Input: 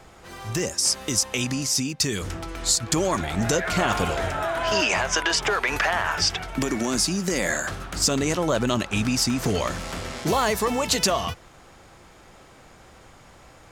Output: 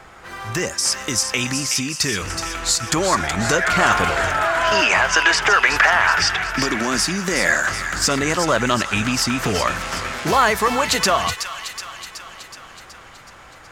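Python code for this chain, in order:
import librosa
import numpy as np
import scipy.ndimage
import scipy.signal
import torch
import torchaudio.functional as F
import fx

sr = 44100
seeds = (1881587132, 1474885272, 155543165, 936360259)

y = fx.peak_eq(x, sr, hz=1500.0, db=9.5, octaves=1.7)
y = fx.echo_wet_highpass(y, sr, ms=373, feedback_pct=61, hz=1600.0, wet_db=-7.5)
y = y * 10.0 ** (1.0 / 20.0)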